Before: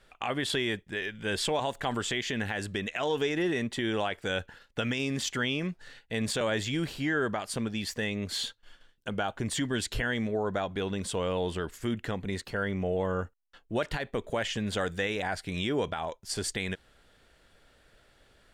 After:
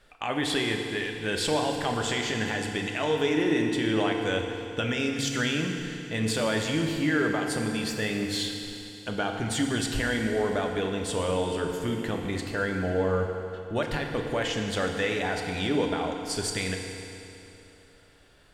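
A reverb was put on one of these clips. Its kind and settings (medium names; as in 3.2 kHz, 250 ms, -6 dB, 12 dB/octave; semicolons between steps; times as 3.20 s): FDN reverb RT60 2.9 s, high-frequency decay 0.95×, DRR 2 dB; trim +1 dB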